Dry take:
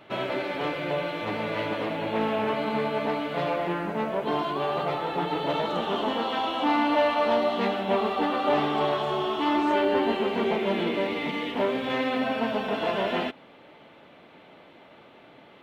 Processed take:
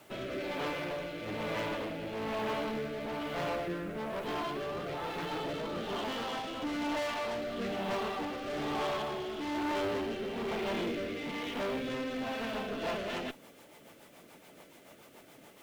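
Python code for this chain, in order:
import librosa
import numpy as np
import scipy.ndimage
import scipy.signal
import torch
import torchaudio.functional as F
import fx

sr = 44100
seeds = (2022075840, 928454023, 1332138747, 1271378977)

y = fx.tube_stage(x, sr, drive_db=30.0, bias=0.55)
y = fx.quant_dither(y, sr, seeds[0], bits=10, dither='triangular')
y = fx.rotary_switch(y, sr, hz=1.1, then_hz=7.0, switch_at_s=12.47)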